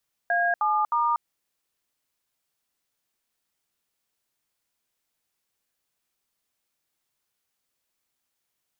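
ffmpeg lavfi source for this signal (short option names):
-f lavfi -i "aevalsrc='0.0708*clip(min(mod(t,0.31),0.24-mod(t,0.31))/0.002,0,1)*(eq(floor(t/0.31),0)*(sin(2*PI*697*mod(t,0.31))+sin(2*PI*1633*mod(t,0.31)))+eq(floor(t/0.31),1)*(sin(2*PI*852*mod(t,0.31))+sin(2*PI*1209*mod(t,0.31)))+eq(floor(t/0.31),2)*(sin(2*PI*941*mod(t,0.31))+sin(2*PI*1209*mod(t,0.31))))':d=0.93:s=44100"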